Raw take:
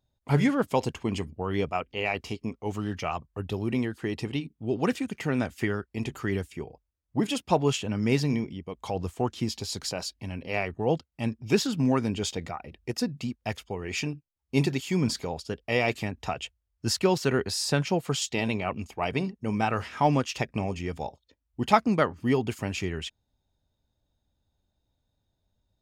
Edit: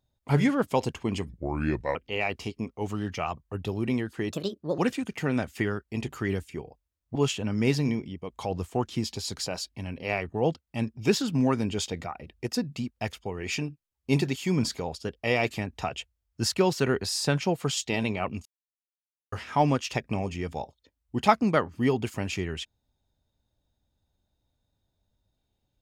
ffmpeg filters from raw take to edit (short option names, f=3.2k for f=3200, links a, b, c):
-filter_complex "[0:a]asplit=8[a][b][c][d][e][f][g][h];[a]atrim=end=1.294[i];[b]atrim=start=1.29:end=1.8,asetpts=PTS-STARTPTS,asetrate=33957,aresample=44100,atrim=end_sample=29209,asetpts=PTS-STARTPTS[j];[c]atrim=start=1.796:end=4.164[k];[d]atrim=start=4.16:end=4.81,asetpts=PTS-STARTPTS,asetrate=60858,aresample=44100[l];[e]atrim=start=4.806:end=7.182[m];[f]atrim=start=7.598:end=18.9,asetpts=PTS-STARTPTS,afade=t=out:st=11.298:d=0.004:c=hsin[n];[g]atrim=start=18.9:end=19.77,asetpts=PTS-STARTPTS,volume=0[o];[h]atrim=start=19.77,asetpts=PTS-STARTPTS,afade=t=in:d=0.004:c=hsin[p];[i][j]acrossfade=d=0.004:c1=hsin:c2=hsin[q];[q][k]acrossfade=d=0.004:c1=hsin:c2=hsin[r];[r][l]acrossfade=d=0.004:c1=hsin:c2=hsin[s];[s][m]acrossfade=d=0.004:c1=hsin:c2=hsin[t];[n][o][p]concat=n=3:v=0:a=1[u];[t][u]acrossfade=d=0.004:c1=hsin:c2=hsin"